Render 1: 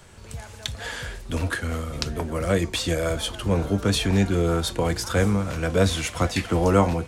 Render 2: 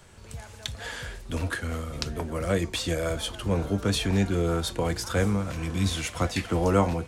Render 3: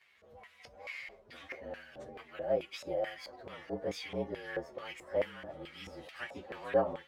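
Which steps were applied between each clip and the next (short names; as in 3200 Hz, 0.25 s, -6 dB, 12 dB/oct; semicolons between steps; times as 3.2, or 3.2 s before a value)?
spectral repair 5.54–5.88, 380–1800 Hz after; gain -3.5 dB
inharmonic rescaling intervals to 114%; LFO band-pass square 2.3 Hz 580–2300 Hz; gain +1 dB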